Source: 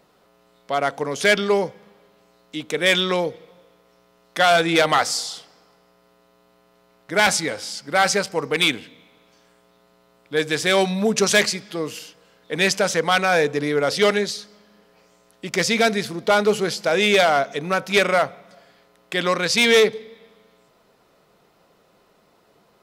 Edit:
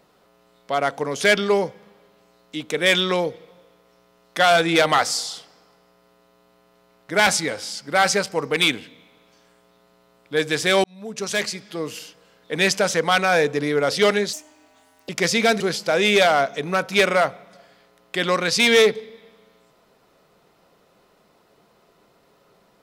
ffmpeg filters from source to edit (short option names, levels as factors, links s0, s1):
-filter_complex "[0:a]asplit=5[s0][s1][s2][s3][s4];[s0]atrim=end=10.84,asetpts=PTS-STARTPTS,afade=t=out:st=10.836:d=0.004:c=hsin[s5];[s1]atrim=start=10.84:end=14.334,asetpts=PTS-STARTPTS,afade=t=in:d=1.17[s6];[s2]atrim=start=14.33:end=15.45,asetpts=PTS-STARTPTS,asetrate=64827,aresample=44100[s7];[s3]atrim=start=15.446:end=15.962[s8];[s4]atrim=start=16.578[s9];[s5][s6]concat=n=2:v=0:a=1[s10];[s10][s7]acrossfade=d=0.004:c1=hsin:c2=hsin[s11];[s11][s8]acrossfade=d=0.004:c1=hsin:c2=hsin[s12];[s12][s9]acrossfade=d=0.004:c1=hsin:c2=hsin"